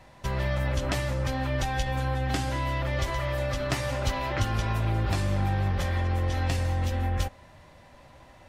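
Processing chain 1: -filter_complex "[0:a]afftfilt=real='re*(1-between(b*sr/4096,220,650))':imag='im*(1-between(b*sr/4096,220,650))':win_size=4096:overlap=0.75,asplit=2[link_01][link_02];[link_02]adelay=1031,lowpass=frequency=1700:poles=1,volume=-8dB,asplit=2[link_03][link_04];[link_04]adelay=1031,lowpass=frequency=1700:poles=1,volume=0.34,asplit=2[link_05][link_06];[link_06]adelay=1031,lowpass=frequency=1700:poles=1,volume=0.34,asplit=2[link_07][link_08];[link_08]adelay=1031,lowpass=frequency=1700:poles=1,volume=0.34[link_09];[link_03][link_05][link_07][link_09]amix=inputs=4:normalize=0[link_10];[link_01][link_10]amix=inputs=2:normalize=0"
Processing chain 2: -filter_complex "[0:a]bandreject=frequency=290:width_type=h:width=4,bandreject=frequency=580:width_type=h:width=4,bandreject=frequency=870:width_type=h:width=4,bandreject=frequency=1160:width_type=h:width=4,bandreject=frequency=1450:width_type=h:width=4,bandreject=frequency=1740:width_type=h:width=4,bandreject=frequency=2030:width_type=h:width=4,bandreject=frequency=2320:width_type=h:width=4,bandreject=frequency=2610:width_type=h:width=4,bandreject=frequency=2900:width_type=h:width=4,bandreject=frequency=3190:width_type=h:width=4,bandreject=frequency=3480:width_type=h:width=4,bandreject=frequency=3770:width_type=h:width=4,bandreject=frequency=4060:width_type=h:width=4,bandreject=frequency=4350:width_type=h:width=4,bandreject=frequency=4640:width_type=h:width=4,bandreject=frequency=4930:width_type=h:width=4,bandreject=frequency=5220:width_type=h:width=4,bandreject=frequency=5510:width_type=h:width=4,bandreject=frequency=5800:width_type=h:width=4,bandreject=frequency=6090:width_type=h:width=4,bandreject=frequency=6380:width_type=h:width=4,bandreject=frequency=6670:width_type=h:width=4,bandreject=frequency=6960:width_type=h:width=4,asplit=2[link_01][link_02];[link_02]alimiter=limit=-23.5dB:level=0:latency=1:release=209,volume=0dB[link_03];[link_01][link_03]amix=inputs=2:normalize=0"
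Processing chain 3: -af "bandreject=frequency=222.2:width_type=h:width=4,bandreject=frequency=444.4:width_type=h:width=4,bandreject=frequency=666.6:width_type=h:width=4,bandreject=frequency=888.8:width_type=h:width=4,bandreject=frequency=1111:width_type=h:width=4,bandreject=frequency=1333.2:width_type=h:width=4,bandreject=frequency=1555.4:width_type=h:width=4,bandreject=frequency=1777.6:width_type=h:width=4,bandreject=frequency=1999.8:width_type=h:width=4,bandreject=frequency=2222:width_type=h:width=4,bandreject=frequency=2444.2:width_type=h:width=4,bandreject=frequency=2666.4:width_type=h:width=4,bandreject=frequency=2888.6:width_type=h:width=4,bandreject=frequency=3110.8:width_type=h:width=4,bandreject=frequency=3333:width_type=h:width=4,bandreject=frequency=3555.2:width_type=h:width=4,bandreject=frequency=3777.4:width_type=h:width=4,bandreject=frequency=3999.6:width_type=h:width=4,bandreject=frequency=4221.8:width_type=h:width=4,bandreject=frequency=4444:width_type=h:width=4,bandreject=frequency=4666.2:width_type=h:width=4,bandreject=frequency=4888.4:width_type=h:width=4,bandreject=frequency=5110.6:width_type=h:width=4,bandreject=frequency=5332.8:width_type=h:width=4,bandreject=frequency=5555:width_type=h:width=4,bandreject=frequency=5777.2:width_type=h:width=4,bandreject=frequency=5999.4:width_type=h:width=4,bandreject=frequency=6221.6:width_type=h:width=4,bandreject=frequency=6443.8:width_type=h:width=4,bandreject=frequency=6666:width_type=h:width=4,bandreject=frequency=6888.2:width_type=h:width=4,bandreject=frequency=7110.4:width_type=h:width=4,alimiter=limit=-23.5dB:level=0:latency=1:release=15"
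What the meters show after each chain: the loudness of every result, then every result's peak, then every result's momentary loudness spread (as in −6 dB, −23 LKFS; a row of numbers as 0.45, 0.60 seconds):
−29.5, −24.5, −32.0 LKFS; −13.0, −11.0, −23.5 dBFS; 7, 2, 1 LU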